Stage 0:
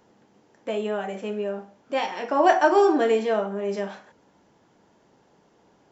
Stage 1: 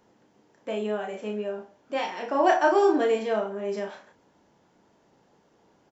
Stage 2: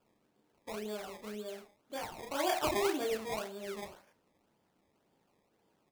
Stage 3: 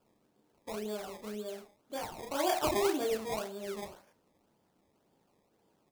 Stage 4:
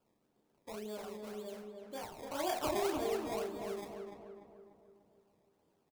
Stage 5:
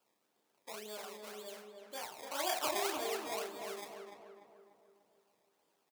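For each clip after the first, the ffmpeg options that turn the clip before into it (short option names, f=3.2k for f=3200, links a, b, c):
-filter_complex "[0:a]asplit=2[a][b];[b]adelay=33,volume=-6dB[c];[a][c]amix=inputs=2:normalize=0,volume=-3.5dB"
-af "acrusher=samples=21:mix=1:aa=0.000001:lfo=1:lforange=21:lforate=1.9,flanger=delay=8.4:depth=5.8:regen=-72:speed=1.1:shape=triangular,volume=-7dB"
-af "equalizer=f=2.1k:w=0.84:g=-4,volume=2.5dB"
-filter_complex "[0:a]asplit=2[a][b];[b]adelay=295,lowpass=f=1.8k:p=1,volume=-4dB,asplit=2[c][d];[d]adelay=295,lowpass=f=1.8k:p=1,volume=0.53,asplit=2[e][f];[f]adelay=295,lowpass=f=1.8k:p=1,volume=0.53,asplit=2[g][h];[h]adelay=295,lowpass=f=1.8k:p=1,volume=0.53,asplit=2[i][j];[j]adelay=295,lowpass=f=1.8k:p=1,volume=0.53,asplit=2[k][l];[l]adelay=295,lowpass=f=1.8k:p=1,volume=0.53,asplit=2[m][n];[n]adelay=295,lowpass=f=1.8k:p=1,volume=0.53[o];[a][c][e][g][i][k][m][o]amix=inputs=8:normalize=0,volume=-5.5dB"
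-af "highpass=f=1.3k:p=1,volume=5.5dB"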